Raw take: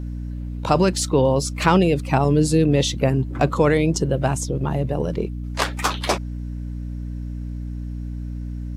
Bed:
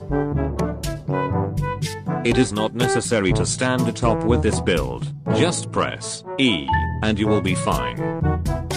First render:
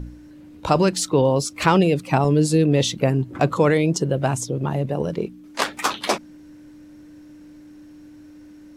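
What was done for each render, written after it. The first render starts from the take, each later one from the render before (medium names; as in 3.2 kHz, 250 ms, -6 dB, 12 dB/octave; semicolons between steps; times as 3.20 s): de-hum 60 Hz, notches 4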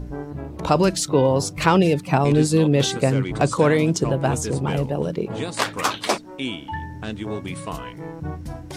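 add bed -10.5 dB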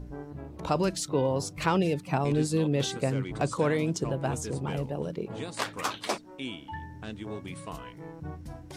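trim -9 dB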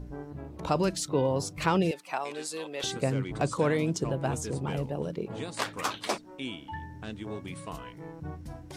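1.91–2.84 s: high-pass 710 Hz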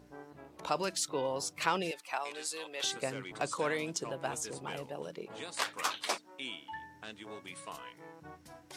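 high-pass 1 kHz 6 dB/octave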